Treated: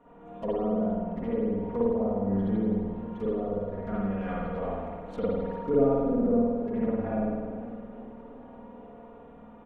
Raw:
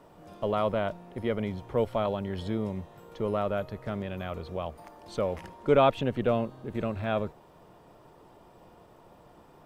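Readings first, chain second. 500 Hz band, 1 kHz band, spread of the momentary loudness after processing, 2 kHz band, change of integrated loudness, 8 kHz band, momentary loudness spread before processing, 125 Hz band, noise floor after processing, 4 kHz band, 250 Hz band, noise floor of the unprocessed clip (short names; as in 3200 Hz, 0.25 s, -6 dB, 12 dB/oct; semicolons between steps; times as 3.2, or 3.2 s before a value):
+0.5 dB, -4.0 dB, 22 LU, -7.5 dB, +1.5 dB, n/a, 12 LU, -0.5 dB, -49 dBFS, under -15 dB, +6.5 dB, -56 dBFS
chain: Wiener smoothing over 9 samples; in parallel at -11 dB: Schmitt trigger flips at -31.5 dBFS; on the sum: treble ducked by the level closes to 430 Hz, closed at -24.5 dBFS; comb 4.2 ms, depth 82%; on a send: swung echo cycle 0.849 s, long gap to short 1.5:1, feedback 59%, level -21 dB; on the sum: spring tank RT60 1.5 s, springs 51 ms, chirp 40 ms, DRR -7.5 dB; warbling echo 0.399 s, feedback 46%, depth 171 cents, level -18 dB; gain -7 dB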